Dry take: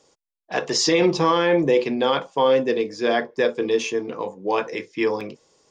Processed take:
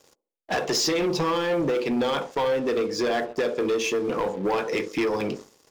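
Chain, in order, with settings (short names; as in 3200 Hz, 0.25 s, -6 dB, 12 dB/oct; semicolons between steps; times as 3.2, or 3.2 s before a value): compressor 5:1, threshold -31 dBFS, peak gain reduction 15.5 dB; band-limited delay 71 ms, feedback 40%, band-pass 410 Hz, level -11 dB; sample leveller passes 3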